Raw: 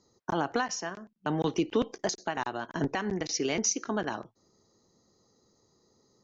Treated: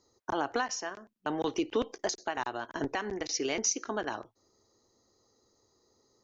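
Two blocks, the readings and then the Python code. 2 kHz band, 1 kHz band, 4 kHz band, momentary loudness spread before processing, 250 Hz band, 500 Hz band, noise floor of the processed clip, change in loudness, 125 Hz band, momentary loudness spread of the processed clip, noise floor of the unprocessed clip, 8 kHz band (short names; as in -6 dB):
-1.0 dB, -1.0 dB, -1.0 dB, 7 LU, -4.5 dB, -1.5 dB, -75 dBFS, -2.0 dB, -11.0 dB, 7 LU, -72 dBFS, n/a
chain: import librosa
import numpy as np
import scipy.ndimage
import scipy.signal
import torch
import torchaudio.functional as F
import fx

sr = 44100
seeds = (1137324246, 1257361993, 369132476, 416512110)

y = fx.peak_eq(x, sr, hz=170.0, db=-14.5, octaves=0.62)
y = F.gain(torch.from_numpy(y), -1.0).numpy()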